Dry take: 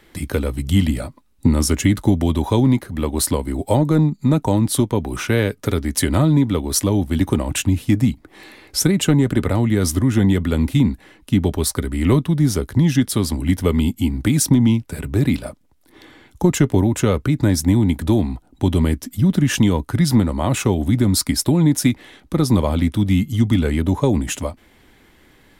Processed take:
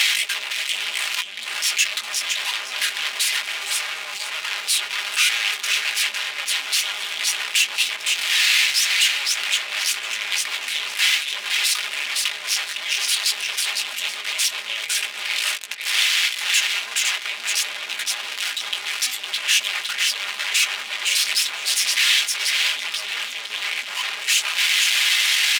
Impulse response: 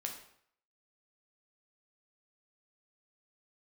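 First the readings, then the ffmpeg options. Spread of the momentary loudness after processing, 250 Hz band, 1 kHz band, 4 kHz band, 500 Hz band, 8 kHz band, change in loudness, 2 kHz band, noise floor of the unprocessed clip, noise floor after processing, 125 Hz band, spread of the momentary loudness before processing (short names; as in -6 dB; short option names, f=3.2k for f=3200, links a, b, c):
8 LU, under -40 dB, -4.0 dB, +12.0 dB, -22.0 dB, +4.0 dB, -1.5 dB, +11.0 dB, -53 dBFS, -33 dBFS, under -40 dB, 6 LU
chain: -af "aeval=exprs='val(0)+0.5*0.0631*sgn(val(0))':c=same,aeval=exprs='(tanh(4.47*val(0)+0.3)-tanh(0.3))/4.47':c=same,flanger=delay=17.5:depth=2.9:speed=0.12,areverse,acompressor=threshold=-30dB:ratio=5,areverse,aecho=1:1:508|1016|1524:0.501|0.12|0.0289,aeval=exprs='0.112*sin(PI/2*4.47*val(0)/0.112)':c=same,aecho=1:1:4.9:0.46,adynamicsmooth=sensitivity=5.5:basefreq=3.5k,highpass=f=2.6k:t=q:w=1.8,volume=5dB"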